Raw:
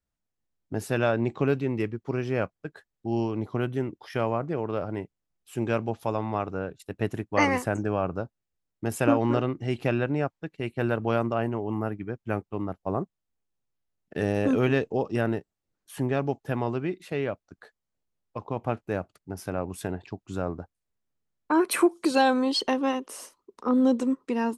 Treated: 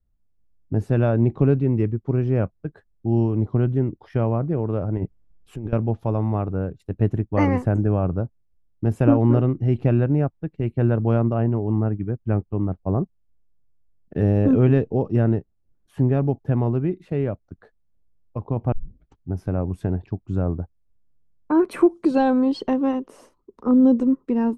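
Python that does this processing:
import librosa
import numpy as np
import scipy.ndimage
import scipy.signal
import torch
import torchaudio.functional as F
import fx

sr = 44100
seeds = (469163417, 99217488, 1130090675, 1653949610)

y = fx.over_compress(x, sr, threshold_db=-37.0, ratio=-1.0, at=(4.97, 5.73))
y = fx.edit(y, sr, fx.tape_start(start_s=18.72, length_s=0.61), tone=tone)
y = fx.tilt_eq(y, sr, slope=-4.5)
y = y * librosa.db_to_amplitude(-2.0)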